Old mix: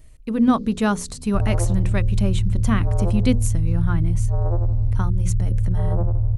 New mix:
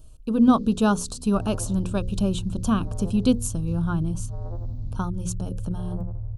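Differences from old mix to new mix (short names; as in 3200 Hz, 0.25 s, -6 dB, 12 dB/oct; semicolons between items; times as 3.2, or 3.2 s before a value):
speech: add Butterworth band-stop 2000 Hz, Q 1.6; second sound -12.0 dB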